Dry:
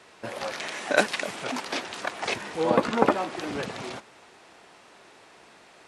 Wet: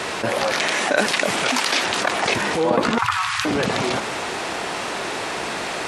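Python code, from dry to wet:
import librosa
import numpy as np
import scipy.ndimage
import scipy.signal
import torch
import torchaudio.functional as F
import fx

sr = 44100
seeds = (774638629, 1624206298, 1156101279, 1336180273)

y = fx.tilt_shelf(x, sr, db=-5.0, hz=970.0, at=(1.43, 1.85))
y = fx.ellip_bandstop(y, sr, low_hz=110.0, high_hz=1100.0, order=3, stop_db=40, at=(2.98, 3.45))
y = fx.env_flatten(y, sr, amount_pct=70)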